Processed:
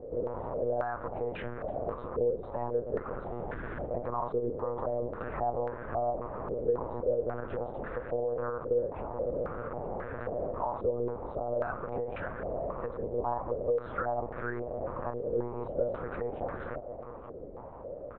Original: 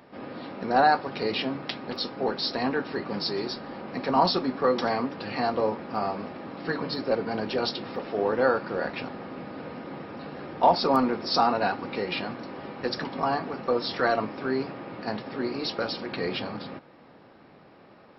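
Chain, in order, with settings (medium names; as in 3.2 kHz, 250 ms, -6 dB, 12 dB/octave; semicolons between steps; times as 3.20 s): peaking EQ 490 Hz +9 dB 0.77 oct; peak limiter -16.5 dBFS, peak gain reduction 12 dB; compression 4:1, threshold -37 dBFS, peak gain reduction 14 dB; 3.25–3.89 s: Schmitt trigger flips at -37 dBFS; echo from a far wall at 150 m, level -12 dB; monotone LPC vocoder at 8 kHz 120 Hz; step-sequenced low-pass 3.7 Hz 470–1600 Hz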